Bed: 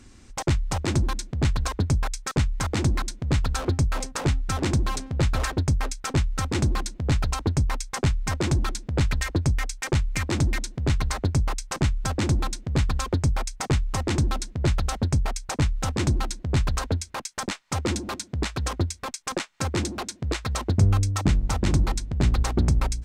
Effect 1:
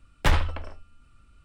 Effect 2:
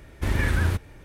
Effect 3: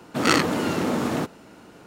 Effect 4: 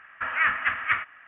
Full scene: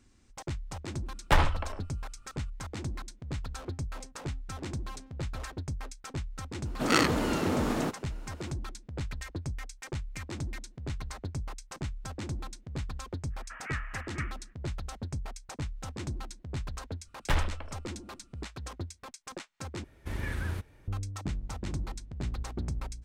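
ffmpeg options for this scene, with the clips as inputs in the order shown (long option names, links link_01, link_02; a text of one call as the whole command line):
ffmpeg -i bed.wav -i cue0.wav -i cue1.wav -i cue2.wav -i cue3.wav -filter_complex "[1:a]asplit=2[link_01][link_02];[0:a]volume=-13.5dB[link_03];[link_01]equalizer=frequency=840:width_type=o:width=1.5:gain=5.5[link_04];[link_03]asplit=2[link_05][link_06];[link_05]atrim=end=19.844[link_07];[2:a]atrim=end=1.04,asetpts=PTS-STARTPTS,volume=-11dB[link_08];[link_06]atrim=start=20.876[link_09];[link_04]atrim=end=1.44,asetpts=PTS-STARTPTS,volume=-3dB,afade=type=in:duration=0.004:curve=hsin,afade=type=out:start_time=1.436:duration=0.004:curve=hsin,adelay=1060[link_10];[3:a]atrim=end=1.86,asetpts=PTS-STARTPTS,volume=-5dB,afade=type=in:duration=0.004:curve=hsin,afade=type=out:start_time=1.856:duration=0.004:curve=hsin,adelay=6650[link_11];[4:a]atrim=end=1.27,asetpts=PTS-STARTPTS,volume=-16dB,afade=type=in:duration=0.05,afade=type=out:start_time=1.22:duration=0.05,adelay=13290[link_12];[link_02]atrim=end=1.44,asetpts=PTS-STARTPTS,volume=-6.5dB,afade=type=in:duration=0.004:curve=hsin,afade=type=out:start_time=1.436:duration=0.004:curve=hsin,adelay=17040[link_13];[link_07][link_08]acrossfade=duration=0.004:curve1=hsin:curve2=hsin[link_14];[link_14][link_09]acrossfade=duration=0.004:curve1=hsin:curve2=hsin[link_15];[link_15][link_10][link_11][link_12][link_13]amix=inputs=5:normalize=0" out.wav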